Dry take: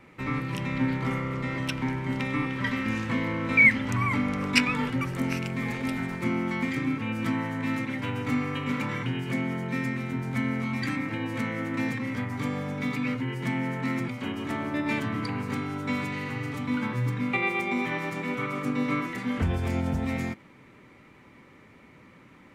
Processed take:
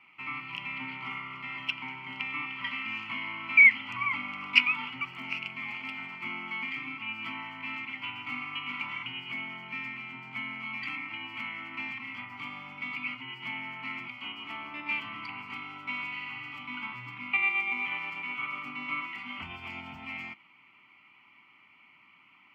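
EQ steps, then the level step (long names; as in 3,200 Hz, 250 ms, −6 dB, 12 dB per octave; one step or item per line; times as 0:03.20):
high-pass filter 1,500 Hz 6 dB per octave
high shelf with overshoot 4,500 Hz −12 dB, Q 3
phaser with its sweep stopped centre 2,500 Hz, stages 8
0.0 dB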